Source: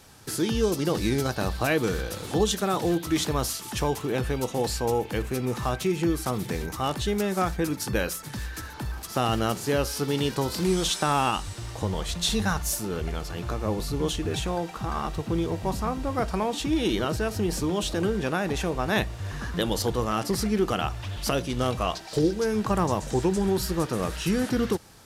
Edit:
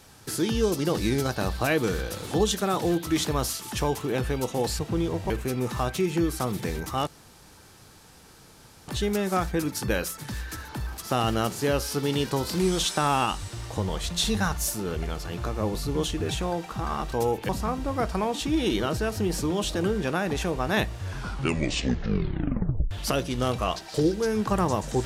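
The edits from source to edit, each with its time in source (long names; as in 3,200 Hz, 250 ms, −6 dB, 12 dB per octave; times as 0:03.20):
0:04.79–0:05.16: swap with 0:15.17–0:15.68
0:06.93: splice in room tone 1.81 s
0:19.19: tape stop 1.91 s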